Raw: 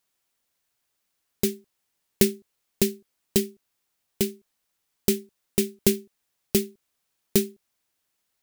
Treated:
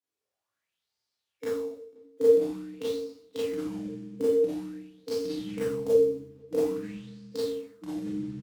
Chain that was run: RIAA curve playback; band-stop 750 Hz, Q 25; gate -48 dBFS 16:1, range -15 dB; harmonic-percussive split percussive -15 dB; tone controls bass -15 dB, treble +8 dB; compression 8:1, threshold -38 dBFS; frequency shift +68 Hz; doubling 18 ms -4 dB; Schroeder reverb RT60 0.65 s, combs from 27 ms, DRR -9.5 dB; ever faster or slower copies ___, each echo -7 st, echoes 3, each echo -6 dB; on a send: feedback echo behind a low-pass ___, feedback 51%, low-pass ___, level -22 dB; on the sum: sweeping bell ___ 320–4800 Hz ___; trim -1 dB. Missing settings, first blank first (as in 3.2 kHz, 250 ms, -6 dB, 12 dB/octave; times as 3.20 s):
222 ms, 247 ms, 3.7 kHz, 0.48 Hz, +14 dB